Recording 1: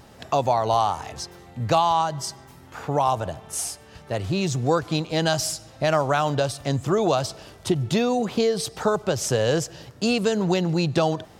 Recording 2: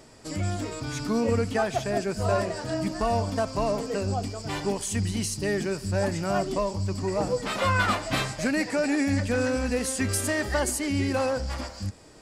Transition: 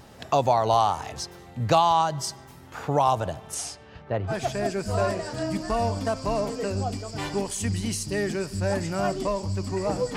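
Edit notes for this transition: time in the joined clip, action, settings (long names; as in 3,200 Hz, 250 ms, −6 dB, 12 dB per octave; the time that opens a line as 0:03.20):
recording 1
0:03.54–0:04.35: low-pass filter 8,400 Hz → 1,200 Hz
0:04.31: continue with recording 2 from 0:01.62, crossfade 0.08 s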